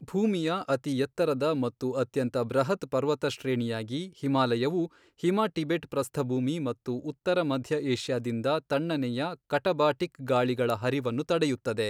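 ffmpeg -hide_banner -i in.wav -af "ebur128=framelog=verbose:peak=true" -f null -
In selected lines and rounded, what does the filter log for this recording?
Integrated loudness:
  I:         -28.9 LUFS
  Threshold: -38.9 LUFS
Loudness range:
  LRA:         1.4 LU
  Threshold: -49.1 LUFS
  LRA low:   -29.8 LUFS
  LRA high:  -28.4 LUFS
True peak:
  Peak:      -12.4 dBFS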